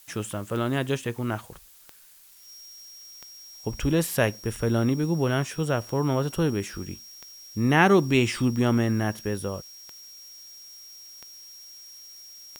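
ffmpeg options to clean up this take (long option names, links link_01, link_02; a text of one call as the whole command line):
ffmpeg -i in.wav -af "adeclick=threshold=4,bandreject=frequency=5600:width=30,afftdn=noise_reduction=24:noise_floor=-46" out.wav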